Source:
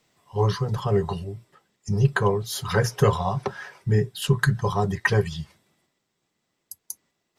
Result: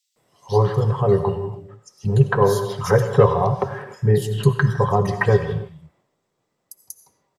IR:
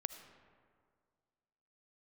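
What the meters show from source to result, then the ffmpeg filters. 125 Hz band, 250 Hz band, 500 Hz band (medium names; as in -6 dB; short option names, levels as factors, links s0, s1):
+4.5 dB, +3.5 dB, +7.0 dB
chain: -filter_complex "[0:a]equalizer=f=125:t=o:w=1:g=6,equalizer=f=500:t=o:w=1:g=9,equalizer=f=1000:t=o:w=1:g=5,acrossover=split=3400[s0][s1];[s0]adelay=160[s2];[s2][s1]amix=inputs=2:normalize=0[s3];[1:a]atrim=start_sample=2205,afade=t=out:st=0.33:d=0.01,atrim=end_sample=14994,asetrate=40131,aresample=44100[s4];[s3][s4]afir=irnorm=-1:irlink=0"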